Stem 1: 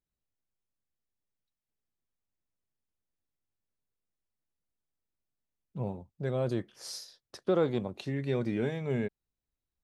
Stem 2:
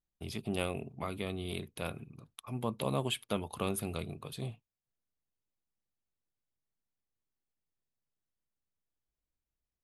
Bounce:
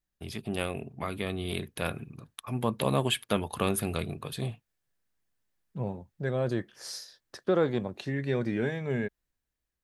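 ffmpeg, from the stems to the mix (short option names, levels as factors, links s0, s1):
-filter_complex "[0:a]volume=0.708[s0];[1:a]volume=1.19[s1];[s0][s1]amix=inputs=2:normalize=0,equalizer=f=1700:t=o:w=0.37:g=7.5,dynaudnorm=f=350:g=7:m=1.68"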